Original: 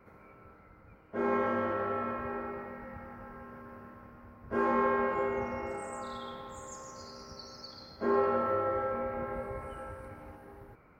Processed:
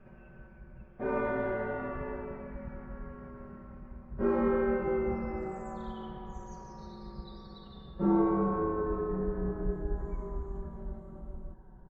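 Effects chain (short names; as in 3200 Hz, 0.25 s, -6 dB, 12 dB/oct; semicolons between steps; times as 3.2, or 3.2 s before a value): speed glide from 116% -> 69%; RIAA curve playback; comb 5.3 ms, depth 73%; gain -5 dB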